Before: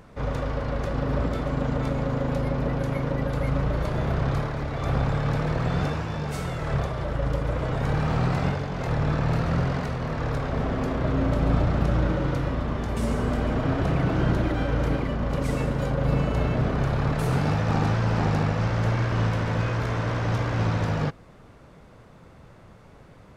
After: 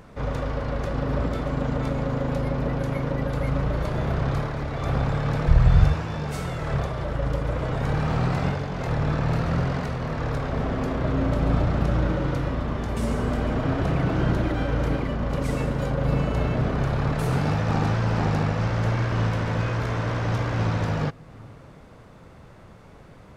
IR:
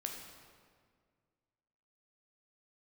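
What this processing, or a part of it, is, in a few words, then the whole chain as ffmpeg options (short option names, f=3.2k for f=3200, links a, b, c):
ducked reverb: -filter_complex "[0:a]asplit=3[a][b][c];[a]afade=t=out:st=5.47:d=0.02[d];[b]asubboost=boost=11.5:cutoff=76,afade=t=in:st=5.47:d=0.02,afade=t=out:st=5.93:d=0.02[e];[c]afade=t=in:st=5.93:d=0.02[f];[d][e][f]amix=inputs=3:normalize=0,asplit=3[g][h][i];[1:a]atrim=start_sample=2205[j];[h][j]afir=irnorm=-1:irlink=0[k];[i]apad=whole_len=1030397[l];[k][l]sidechaincompress=threshold=-44dB:ratio=8:attack=16:release=213,volume=-8dB[m];[g][m]amix=inputs=2:normalize=0"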